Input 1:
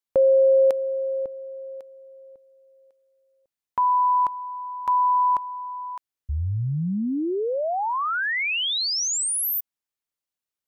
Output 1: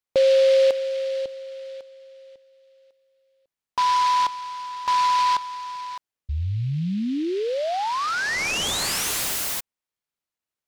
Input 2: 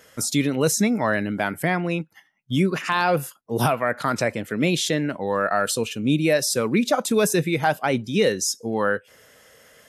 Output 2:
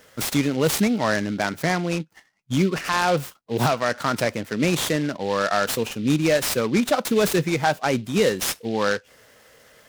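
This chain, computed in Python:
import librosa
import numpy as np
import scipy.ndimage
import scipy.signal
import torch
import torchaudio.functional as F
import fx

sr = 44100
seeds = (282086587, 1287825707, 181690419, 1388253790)

y = fx.noise_mod_delay(x, sr, seeds[0], noise_hz=3000.0, depth_ms=0.039)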